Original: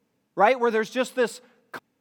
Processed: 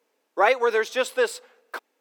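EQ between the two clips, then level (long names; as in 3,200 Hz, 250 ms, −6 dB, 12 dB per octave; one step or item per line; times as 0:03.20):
high-pass filter 370 Hz 24 dB per octave
dynamic equaliser 740 Hz, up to −6 dB, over −30 dBFS, Q 1.5
+3.5 dB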